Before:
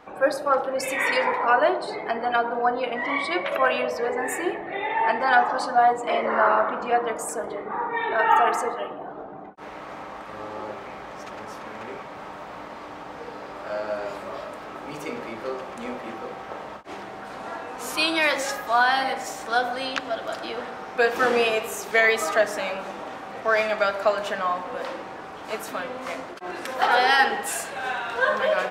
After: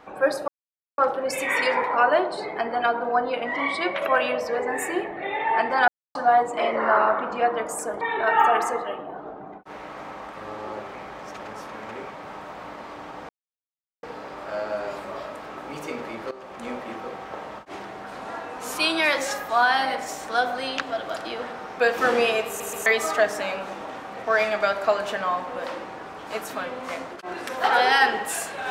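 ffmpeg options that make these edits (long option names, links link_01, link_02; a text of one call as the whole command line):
ffmpeg -i in.wav -filter_complex "[0:a]asplit=10[link_01][link_02][link_03][link_04][link_05][link_06][link_07][link_08][link_09][link_10];[link_01]atrim=end=0.48,asetpts=PTS-STARTPTS,afade=type=out:start_time=0.476:duration=0.004:curve=hsin,apad=pad_dur=0.5[link_11];[link_02]atrim=start=0.48:end=5.38,asetpts=PTS-STARTPTS,afade=type=in:duration=0.004:curve=hsin,afade=type=out:start_time=4.896:duration=0.004:curve=hsin[link_12];[link_03]atrim=start=5.38:end=5.65,asetpts=PTS-STARTPTS,volume=0[link_13];[link_04]atrim=start=5.65:end=7.512,asetpts=PTS-STARTPTS,afade=type=in:duration=0.004:curve=hsin[link_14];[link_05]atrim=start=7.928:end=13.21,asetpts=PTS-STARTPTS,afade=type=out:start_time=5.278:duration=0.004:curve=hsin,apad=pad_dur=0.74[link_15];[link_06]atrim=start=13.21:end=15.49,asetpts=PTS-STARTPTS,afade=type=in:duration=0.004:curve=hsin,afade=type=out:start_time=2.276:duration=0.004:curve=hsin:silence=0.199526[link_16];[link_07]atrim=start=15.49:end=21.782,asetpts=PTS-STARTPTS,afade=type=in:duration=0.36:silence=0.199526[link_17];[link_08]atrim=start=21.648:end=21.782[link_18];[link_09]atrim=start=21.648:end=21.782[link_19];[link_10]atrim=start=22.038[link_20];[link_11][link_12][link_13][link_14]concat=n=4:v=0:a=1[link_21];[link_15][link_16][link_17]concat=n=3:v=0:a=1[link_22];[link_21][link_22]acrossfade=duration=0.004:curve1=hsin:curve2=hsin[link_23];[link_23][link_18]acrossfade=duration=0.004:curve1=hsin:curve2=hsin[link_24];[link_24][link_19]acrossfade=duration=0.004:curve1=hsin:curve2=hsin[link_25];[link_25][link_20]acrossfade=duration=0.004:curve1=hsin:curve2=hsin" out.wav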